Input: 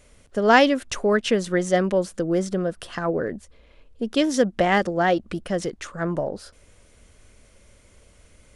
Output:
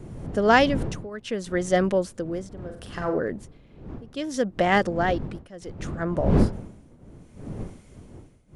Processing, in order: wind noise 220 Hz -28 dBFS; 2.53–3.19 s: flutter echo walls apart 7.7 m, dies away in 0.38 s; tremolo triangle 0.68 Hz, depth 90%

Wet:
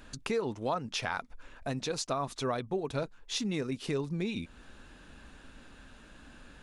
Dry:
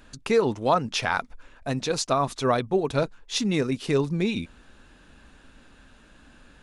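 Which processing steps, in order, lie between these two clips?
compression 2:1, threshold -37 dBFS, peak gain reduction 11.5 dB

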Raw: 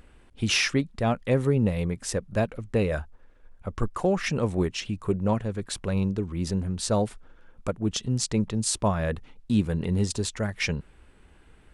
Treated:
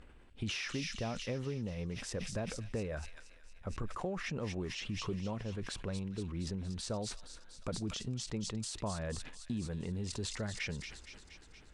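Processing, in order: compression 6:1, threshold -30 dBFS, peak gain reduction 12.5 dB; distance through air 56 m; on a send: feedback echo behind a high-pass 234 ms, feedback 67%, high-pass 2.9 kHz, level -6 dB; on the sum: decay stretcher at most 49 dB/s; trim -5.5 dB

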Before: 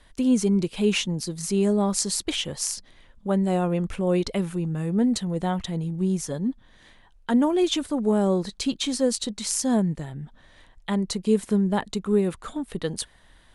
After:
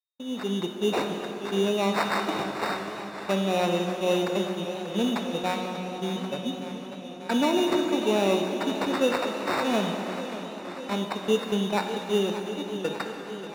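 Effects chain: sample-rate reducer 3.2 kHz, jitter 0%; treble shelf 2.4 kHz -10.5 dB; whistle 3.7 kHz -45 dBFS; frequency weighting A; gate -34 dBFS, range -46 dB; level rider gain up to 11 dB; reverberation RT60 3.0 s, pre-delay 22 ms, DRR 3.5 dB; modulated delay 588 ms, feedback 74%, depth 64 cents, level -12.5 dB; trim -7.5 dB

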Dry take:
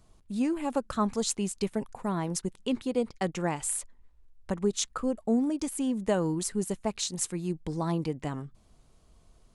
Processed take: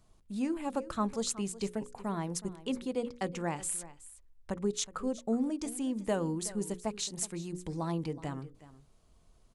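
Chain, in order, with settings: hum notches 60/120/180/240/300/360/420/480/540 Hz; delay 370 ms -17 dB; trim -4 dB

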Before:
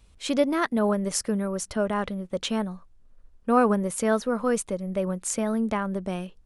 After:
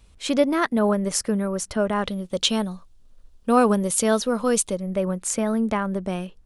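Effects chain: 2.05–4.76 s: resonant high shelf 2.6 kHz +6.5 dB, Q 1.5; trim +3 dB

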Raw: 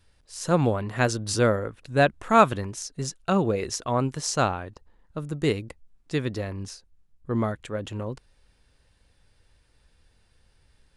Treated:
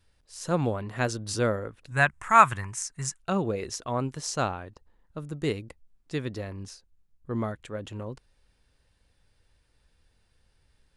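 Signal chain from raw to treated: 1.91–3.20 s: graphic EQ 125/250/500/1000/2000/4000/8000 Hz +5/-8/-10/+8/+9/-7/+11 dB; trim -4.5 dB

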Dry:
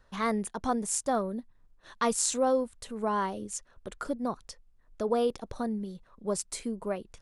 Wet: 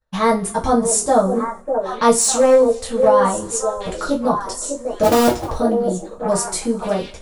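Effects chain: 5.03–5.49 s: cycle switcher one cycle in 2, inverted; peaking EQ 62 Hz +9 dB 0.28 oct; on a send: repeats whose band climbs or falls 598 ms, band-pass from 440 Hz, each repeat 1.4 oct, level -3.5 dB; on the sum: dynamic bell 2.3 kHz, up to -6 dB, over -47 dBFS, Q 0.94; in parallel at -2.5 dB: peak limiter -21.5 dBFS, peak gain reduction 11 dB; 2.17–3.08 s: on the sum: hard clipper -17.5 dBFS, distortion -25 dB; two-slope reverb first 0.22 s, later 1.6 s, from -27 dB, DRR -5.5 dB; expander -34 dBFS; trim +3.5 dB

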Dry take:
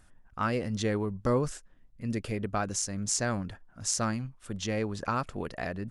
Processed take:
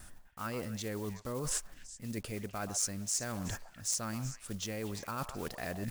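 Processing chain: block-companded coder 5-bit; reverse; compression 10:1, threshold -43 dBFS, peak gain reduction 20.5 dB; reverse; treble shelf 5.4 kHz +10 dB; gate with hold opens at -56 dBFS; on a send: repeats whose band climbs or falls 125 ms, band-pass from 840 Hz, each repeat 1.4 oct, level -7 dB; on the sum: trim +7 dB

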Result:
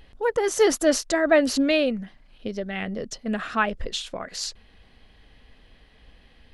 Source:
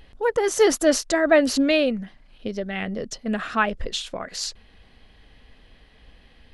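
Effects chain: trim -1.5 dB

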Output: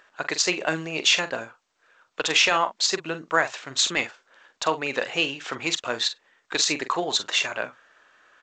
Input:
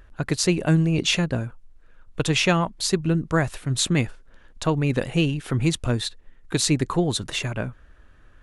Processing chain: high-pass 680 Hz 12 dB/octave; doubling 44 ms -11.5 dB; loudness maximiser +12 dB; trim -7 dB; G.722 64 kbps 16 kHz

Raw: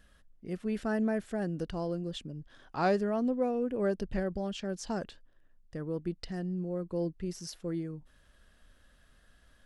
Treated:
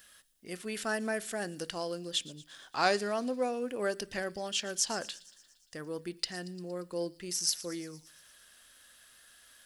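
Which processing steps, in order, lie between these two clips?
tilt EQ +4.5 dB/octave; feedback echo behind a high-pass 116 ms, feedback 65%, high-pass 3.7 kHz, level -16 dB; on a send at -15.5 dB: reverberation RT60 0.45 s, pre-delay 3 ms; on the sum: trim +2.5 dB

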